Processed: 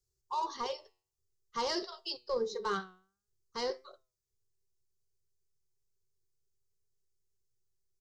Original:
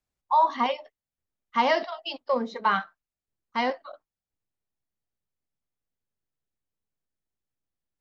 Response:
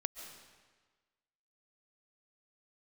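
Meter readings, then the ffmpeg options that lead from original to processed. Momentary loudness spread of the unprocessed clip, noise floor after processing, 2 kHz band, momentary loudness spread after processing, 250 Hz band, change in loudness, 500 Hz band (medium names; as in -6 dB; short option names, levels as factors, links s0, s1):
12 LU, under -85 dBFS, -14.0 dB, 11 LU, -11.0 dB, -10.5 dB, -7.5 dB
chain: -filter_complex "[0:a]asplit=2[s0][s1];[s1]asoftclip=type=tanh:threshold=0.0841,volume=0.447[s2];[s0][s2]amix=inputs=2:normalize=0,firequalizer=gain_entry='entry(130,0);entry(260,-26);entry(380,5);entry(630,-22);entry(1200,-14);entry(2300,-22);entry(4600,0);entry(6500,3);entry(9400,-3)':delay=0.05:min_phase=1,flanger=delay=7.2:depth=3.7:regen=86:speed=0.51:shape=triangular,volume=2"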